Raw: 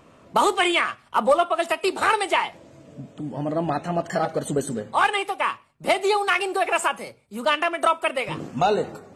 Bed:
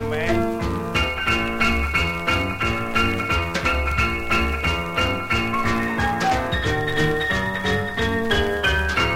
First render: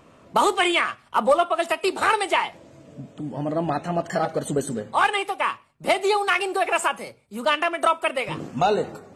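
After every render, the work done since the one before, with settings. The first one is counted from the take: no audible change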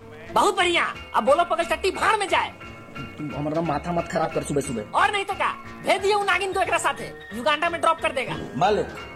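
add bed -18 dB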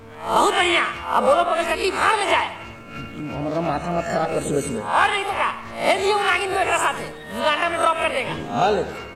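reverse spectral sustain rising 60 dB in 0.43 s; feedback delay 92 ms, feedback 47%, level -14 dB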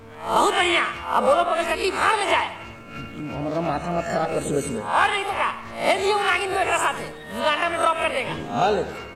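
trim -1.5 dB

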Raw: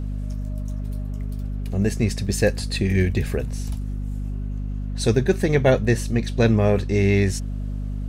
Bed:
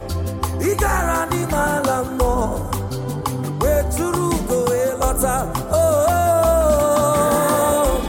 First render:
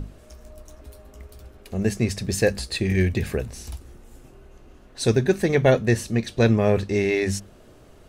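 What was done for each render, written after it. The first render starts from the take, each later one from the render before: hum notches 50/100/150/200/250 Hz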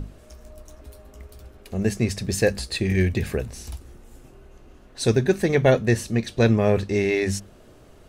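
no audible change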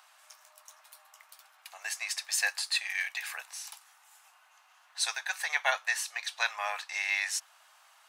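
steep high-pass 810 Hz 48 dB/octave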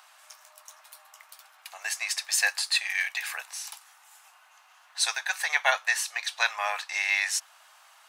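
trim +4.5 dB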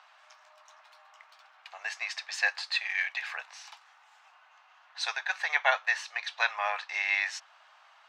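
distance through air 190 m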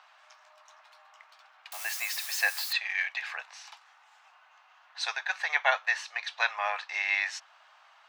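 1.72–2.73 s: zero-crossing glitches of -29 dBFS

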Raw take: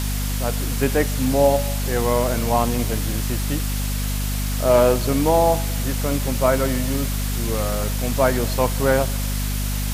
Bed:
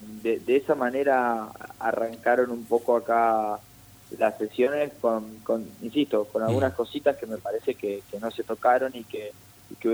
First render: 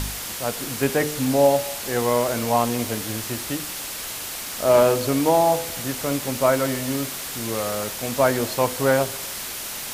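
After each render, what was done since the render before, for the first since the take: de-hum 50 Hz, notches 10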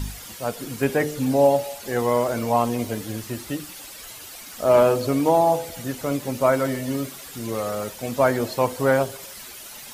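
noise reduction 11 dB, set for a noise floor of -32 dBFS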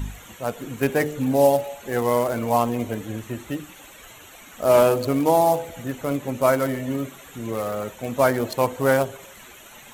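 local Wiener filter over 9 samples; treble shelf 4.3 kHz +11 dB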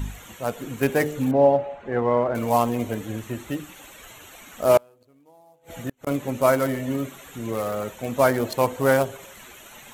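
1.31–2.35 s: low-pass 1.8 kHz; 4.77–6.07 s: inverted gate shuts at -17 dBFS, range -36 dB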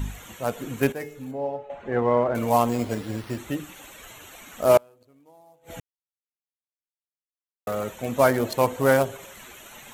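0.92–1.70 s: feedback comb 430 Hz, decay 0.46 s, mix 80%; 2.69–3.38 s: careless resampling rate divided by 6×, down none, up hold; 5.80–7.67 s: mute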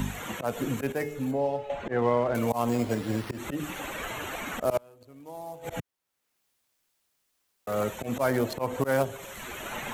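slow attack 164 ms; three bands compressed up and down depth 70%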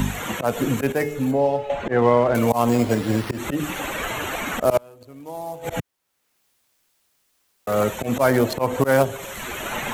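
trim +8 dB

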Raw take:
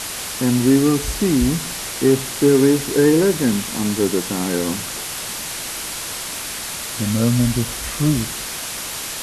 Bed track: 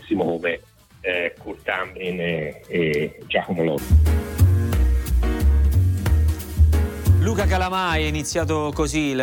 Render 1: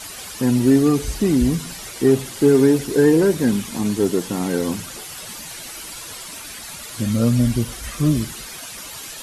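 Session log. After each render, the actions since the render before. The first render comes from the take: noise reduction 11 dB, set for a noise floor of -29 dBFS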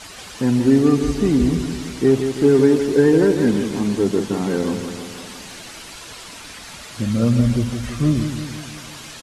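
distance through air 61 m; feedback delay 166 ms, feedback 58%, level -8 dB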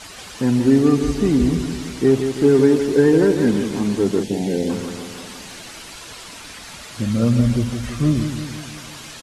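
4.23–4.70 s: Butterworth band-stop 1.2 kHz, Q 1.1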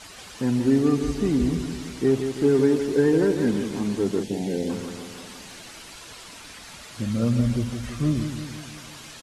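trim -5.5 dB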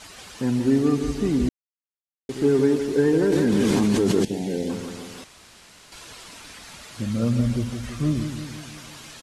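1.49–2.29 s: mute; 3.32–4.25 s: level flattener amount 100%; 5.24–5.92 s: room tone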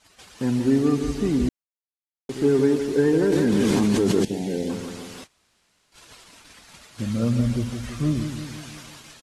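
gate -41 dBFS, range -17 dB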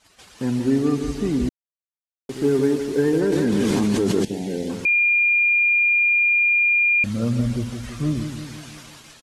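1.48–3.21 s: CVSD coder 64 kbps; 4.85–7.04 s: bleep 2.41 kHz -14.5 dBFS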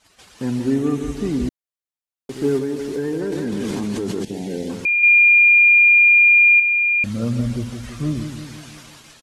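0.74–1.17 s: peaking EQ 4.7 kHz -11.5 dB 0.3 oct; 2.58–4.51 s: compression 2.5:1, threshold -22 dBFS; 5.03–6.60 s: treble shelf 2.2 kHz +11.5 dB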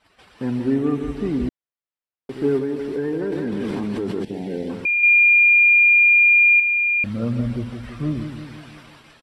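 tone controls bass -2 dB, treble -13 dB; band-stop 6.6 kHz, Q 5.3

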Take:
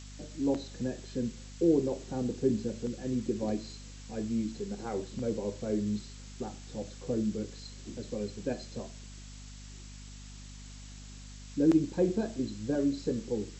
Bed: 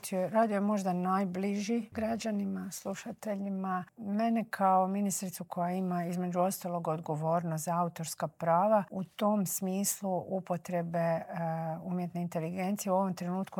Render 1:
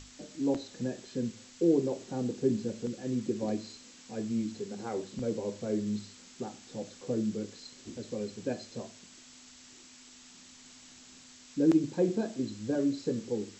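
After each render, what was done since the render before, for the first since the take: hum notches 50/100/150/200 Hz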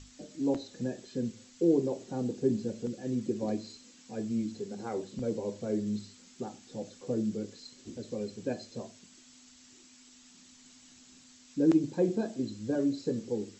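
noise reduction 6 dB, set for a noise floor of -54 dBFS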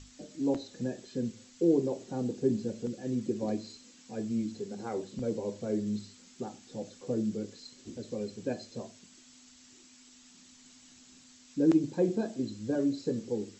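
no audible change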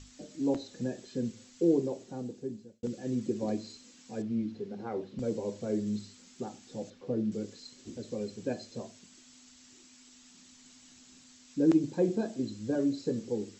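1.66–2.83 s: fade out; 4.22–5.19 s: distance through air 220 m; 6.90–7.32 s: distance through air 190 m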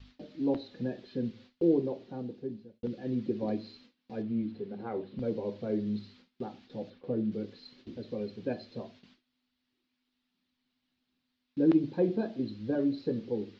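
gate with hold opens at -43 dBFS; steep low-pass 4.3 kHz 36 dB/octave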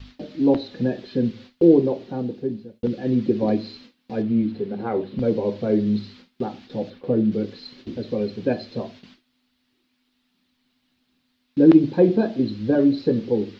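trim +11.5 dB

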